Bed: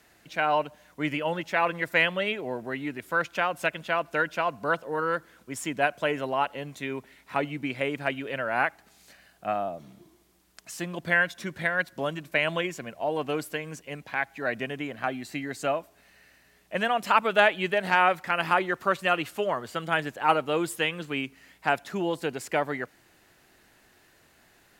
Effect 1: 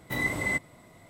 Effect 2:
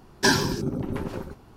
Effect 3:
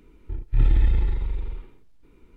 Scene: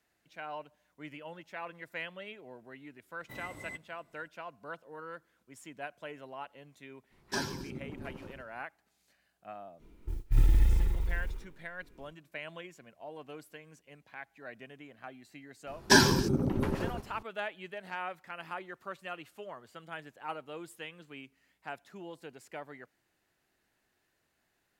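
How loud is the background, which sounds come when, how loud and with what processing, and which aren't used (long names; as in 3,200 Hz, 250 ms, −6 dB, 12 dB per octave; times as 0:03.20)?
bed −17 dB
0:03.19: mix in 1 −16 dB
0:07.09: mix in 2 −14.5 dB, fades 0.05 s
0:09.78: mix in 3 −5 dB, fades 0.05 s + noise that follows the level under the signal 32 dB
0:15.67: mix in 2 −0.5 dB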